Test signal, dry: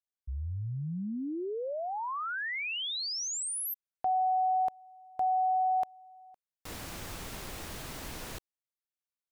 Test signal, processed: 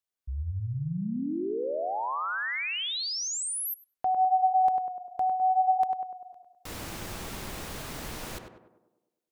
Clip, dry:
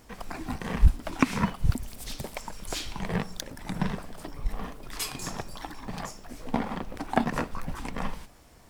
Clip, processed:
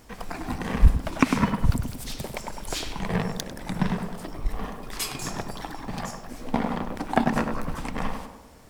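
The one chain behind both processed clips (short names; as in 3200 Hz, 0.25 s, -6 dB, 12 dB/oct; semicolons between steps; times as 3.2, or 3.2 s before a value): tape echo 0.1 s, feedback 60%, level -3.5 dB, low-pass 1400 Hz; gain +2.5 dB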